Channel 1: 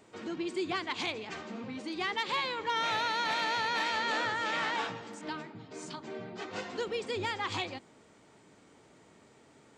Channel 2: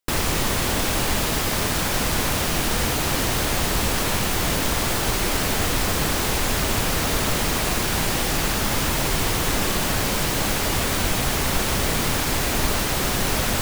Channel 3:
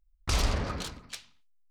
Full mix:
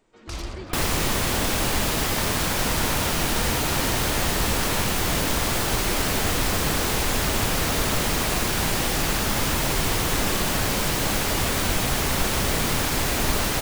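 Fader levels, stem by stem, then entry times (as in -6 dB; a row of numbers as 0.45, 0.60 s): -7.5, -1.0, -6.5 dB; 0.00, 0.65, 0.00 s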